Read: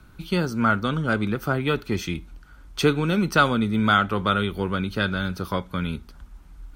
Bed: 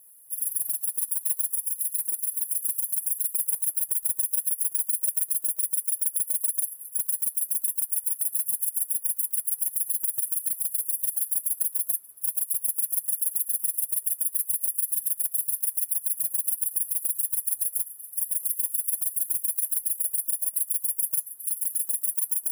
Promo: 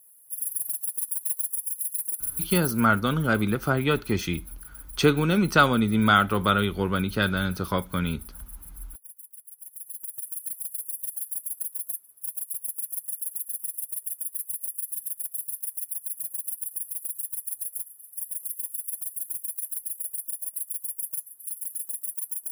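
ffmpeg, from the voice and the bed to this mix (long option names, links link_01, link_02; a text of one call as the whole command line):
ffmpeg -i stem1.wav -i stem2.wav -filter_complex "[0:a]adelay=2200,volume=0dB[link_01];[1:a]volume=11dB,afade=type=out:start_time=2.61:duration=0.26:silence=0.141254,afade=type=in:start_time=9.56:duration=0.92:silence=0.223872[link_02];[link_01][link_02]amix=inputs=2:normalize=0" out.wav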